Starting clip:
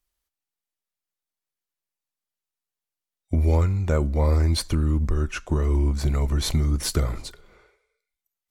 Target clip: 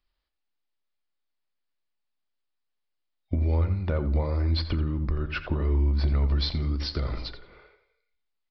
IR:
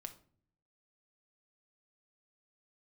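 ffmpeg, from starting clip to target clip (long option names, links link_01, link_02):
-filter_complex "[0:a]asettb=1/sr,asplit=3[link_01][link_02][link_03];[link_01]atrim=end=6.294[link_04];[link_02]atrim=start=6.29:end=7.24,asetpts=PTS-STARTPTS,afade=type=in:duration=0.004:curve=qsin,afade=type=out:start_time=0.946:duration=0.004:curve=qsin,bass=frequency=250:gain=-1,treble=frequency=4000:gain=12[link_05];[link_03]atrim=start=7.236[link_06];[link_04][link_05]acrossfade=duration=0.004:curve1=hsin:curve2=qsin[link_07];[link_07][link_06]acrossfade=duration=0.004:curve1=qsin:curve2=hsin,acompressor=threshold=-26dB:ratio=6,asplit=2[link_08][link_09];[1:a]atrim=start_sample=2205,asetrate=70560,aresample=44100[link_10];[link_09][link_10]afir=irnorm=-1:irlink=0,volume=7dB[link_11];[link_08][link_11]amix=inputs=2:normalize=0,aresample=11025,aresample=44100,asplit=2[link_12][link_13];[link_13]adelay=86,lowpass=frequency=2600:poles=1,volume=-10.5dB,asplit=2[link_14][link_15];[link_15]adelay=86,lowpass=frequency=2600:poles=1,volume=0.29,asplit=2[link_16][link_17];[link_17]adelay=86,lowpass=frequency=2600:poles=1,volume=0.29[link_18];[link_12][link_14][link_16][link_18]amix=inputs=4:normalize=0,volume=-3dB"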